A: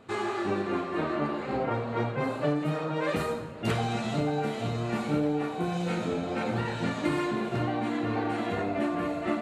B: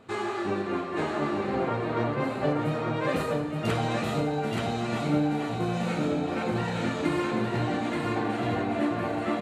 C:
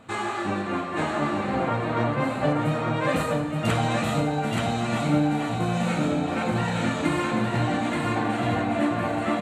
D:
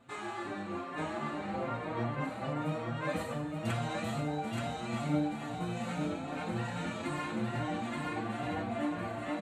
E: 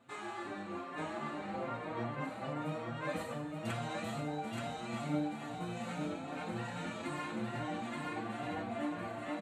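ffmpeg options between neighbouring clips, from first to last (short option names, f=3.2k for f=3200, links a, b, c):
-af "aecho=1:1:877:0.708"
-af "equalizer=f=400:t=o:w=0.33:g=-11,equalizer=f=5k:t=o:w=0.33:g=-5,equalizer=f=8k:t=o:w=0.33:g=5,volume=4.5dB"
-filter_complex "[0:a]asplit=2[a][b];[b]adelay=5.4,afreqshift=2.4[c];[a][c]amix=inputs=2:normalize=1,volume=-8dB"
-af "highpass=f=130:p=1,volume=-3dB"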